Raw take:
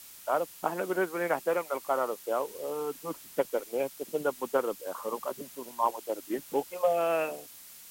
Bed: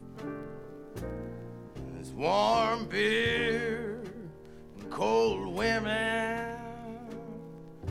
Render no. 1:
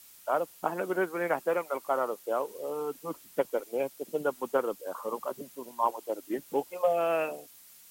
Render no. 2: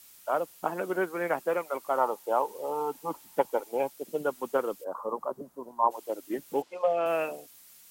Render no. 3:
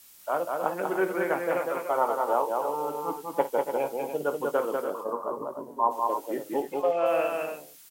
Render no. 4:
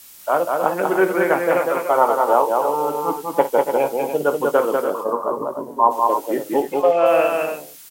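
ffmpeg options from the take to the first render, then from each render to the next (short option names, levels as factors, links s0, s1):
-af "afftdn=nr=6:nf=-50"
-filter_complex "[0:a]asettb=1/sr,asplit=3[s0][s1][s2];[s0]atrim=end=1.984[s3];[s1]atrim=start=1.98:end=3.91,asetpts=PTS-STARTPTS,afade=t=in:d=0.004:c=qsin,afade=t=out:st=1.926:d=0.004:c=qsin,equalizer=f=870:t=o:w=0.38:g=14[s4];[s2]atrim=start=3.906[s5];[s3][s4]acrossfade=d=0.004:c1=hsin:c2=qsin[s6];[s6][s5]acrossfade=d=0.004:c1=qsin:c2=hsin,asplit=3[s7][s8][s9];[s7]afade=t=out:st=4.83:d=0.02[s10];[s8]highshelf=f=1600:t=q:w=1.5:g=-14,afade=t=in:st=4.83:d=0.02,afade=t=out:st=5.9:d=0.02[s11];[s9]afade=t=in:st=5.9:d=0.02[s12];[s10][s11][s12]amix=inputs=3:normalize=0,asettb=1/sr,asplit=3[s13][s14][s15];[s13]atrim=end=6.624[s16];[s14]atrim=start=6.62:end=7.06,asetpts=PTS-STARTPTS,afade=t=in:d=0.004:c=qsin,afade=t=out:st=0.436:d=0.004:c=qsin,highpass=170,lowpass=4800[s17];[s15]atrim=start=7.056[s18];[s16][s17]acrossfade=d=0.004:c1=hsin:c2=qsin[s19];[s19][s18]acrossfade=d=0.004:c1=qsin:c2=hsin"
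-filter_complex "[0:a]asplit=2[s0][s1];[s1]adelay=21,volume=0.282[s2];[s0][s2]amix=inputs=2:normalize=0,aecho=1:1:53|194|276|295:0.211|0.668|0.141|0.355"
-af "volume=2.99,alimiter=limit=0.794:level=0:latency=1"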